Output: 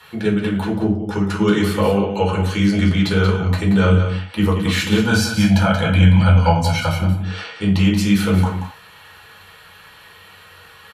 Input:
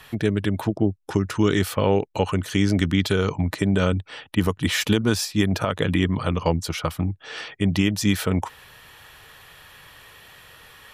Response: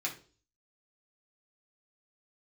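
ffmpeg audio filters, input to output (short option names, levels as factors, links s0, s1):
-filter_complex "[0:a]asettb=1/sr,asplit=3[s0][s1][s2];[s0]atrim=end=5.014[s3];[s1]atrim=start=5.01:end=7.01,asetpts=PTS-STARTPTS,afade=t=in:d=0.004:c=qsin,afade=t=out:st=1.996:d=0.004:c=qsin,aecho=1:1:1.3:0.99,atrim=end_sample=88200[s4];[s2]atrim=start=7.006[s5];[s3][s4]acrossfade=d=0.004:c1=hsin:c2=qsin[s6];[s6][s5]acrossfade=d=0.004:c1=qsin:c2=hsin,aecho=1:1:181:0.376[s7];[1:a]atrim=start_sample=2205,atrim=end_sample=3969,asetrate=27342,aresample=44100[s8];[s7][s8]afir=irnorm=-1:irlink=0,volume=0.708"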